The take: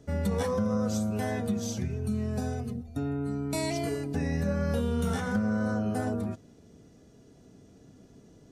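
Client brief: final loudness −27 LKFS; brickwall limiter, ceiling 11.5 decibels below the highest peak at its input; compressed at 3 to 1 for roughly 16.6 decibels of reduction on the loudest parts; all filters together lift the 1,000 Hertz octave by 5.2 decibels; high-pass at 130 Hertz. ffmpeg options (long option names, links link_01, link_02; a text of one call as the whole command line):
ffmpeg -i in.wav -af "highpass=130,equalizer=frequency=1000:width_type=o:gain=7,acompressor=threshold=-48dB:ratio=3,volume=25dB,alimiter=limit=-18.5dB:level=0:latency=1" out.wav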